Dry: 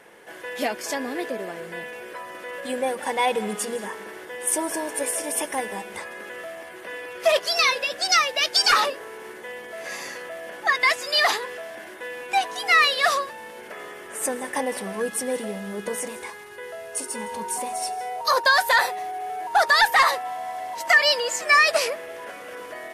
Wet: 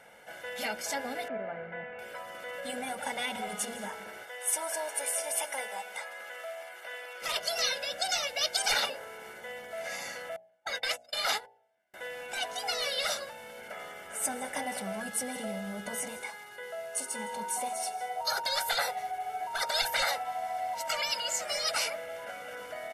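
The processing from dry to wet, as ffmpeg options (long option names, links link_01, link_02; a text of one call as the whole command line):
ffmpeg -i in.wav -filter_complex "[0:a]asettb=1/sr,asplit=3[link_01][link_02][link_03];[link_01]atrim=end=1.284[link_04];[link_02]atrim=start=1.28:end=1.99,asetpts=PTS-STARTPTS,afade=type=in:duration=0.004:curve=qsin,afade=type=out:start_time=0.706:duration=0.004:curve=qsin,lowpass=frequency=2300:width=0.5412,lowpass=frequency=2300:width=1.3066[link_05];[link_03]atrim=start=1.986[link_06];[link_04][link_05]acrossfade=duration=0.004:curve1=hsin:curve2=qsin[link_07];[link_07][link_06]acrossfade=duration=0.004:curve1=qsin:curve2=hsin,asettb=1/sr,asplit=3[link_08][link_09][link_10];[link_08]atrim=end=4.234[link_11];[link_09]atrim=start=4.23:end=7.22,asetpts=PTS-STARTPTS,afade=type=in:duration=0.004:curve=qsin,afade=type=out:start_time=2.986:duration=0.004:curve=qsin,highpass=570[link_12];[link_10]atrim=start=7.216[link_13];[link_11][link_12]acrossfade=duration=0.004:curve1=hsin:curve2=qsin[link_14];[link_14][link_13]acrossfade=duration=0.004:curve1=qsin:curve2=hsin,asettb=1/sr,asplit=3[link_15][link_16][link_17];[link_15]atrim=end=10.364[link_18];[link_16]atrim=start=10.36:end=11.94,asetpts=PTS-STARTPTS,afade=type=in:duration=0.004:curve=qsin,afade=type=out:start_time=1.576:duration=0.004:curve=qsin,agate=range=-36dB:threshold=-29dB:ratio=16:release=100:detection=peak[link_19];[link_17]atrim=start=11.936[link_20];[link_18][link_19]acrossfade=duration=0.004:curve1=hsin:curve2=qsin[link_21];[link_21][link_20]acrossfade=duration=0.004:curve1=qsin:curve2=hsin,asettb=1/sr,asplit=3[link_22][link_23][link_24];[link_22]atrim=end=16.214[link_25];[link_23]atrim=start=16.21:end=18.21,asetpts=PTS-STARTPTS,afade=type=in:duration=0.004:curve=qsin,afade=type=out:start_time=1.996:duration=0.004:curve=qsin,highpass=160[link_26];[link_24]atrim=start=18.206[link_27];[link_25][link_26]acrossfade=duration=0.004:curve1=hsin:curve2=qsin[link_28];[link_28][link_27]acrossfade=duration=0.004:curve1=qsin:curve2=hsin,afftfilt=real='re*lt(hypot(re,im),0.355)':imag='im*lt(hypot(re,im),0.355)':win_size=1024:overlap=0.75,aecho=1:1:1.4:0.72,bandreject=frequency=58.91:width_type=h:width=4,bandreject=frequency=117.82:width_type=h:width=4,bandreject=frequency=176.73:width_type=h:width=4,bandreject=frequency=235.64:width_type=h:width=4,bandreject=frequency=294.55:width_type=h:width=4,bandreject=frequency=353.46:width_type=h:width=4,bandreject=frequency=412.37:width_type=h:width=4,bandreject=frequency=471.28:width_type=h:width=4,bandreject=frequency=530.19:width_type=h:width=4,bandreject=frequency=589.1:width_type=h:width=4,bandreject=frequency=648.01:width_type=h:width=4,bandreject=frequency=706.92:width_type=h:width=4,bandreject=frequency=765.83:width_type=h:width=4,bandreject=frequency=824.74:width_type=h:width=4,bandreject=frequency=883.65:width_type=h:width=4,volume=-5.5dB" out.wav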